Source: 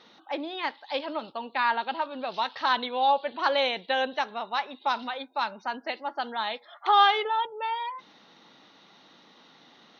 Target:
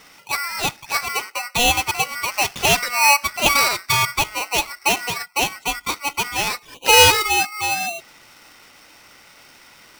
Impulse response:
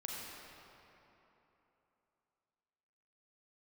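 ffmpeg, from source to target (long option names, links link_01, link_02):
-af "aeval=exprs='val(0)*sgn(sin(2*PI*1700*n/s))':channel_layout=same,volume=8dB"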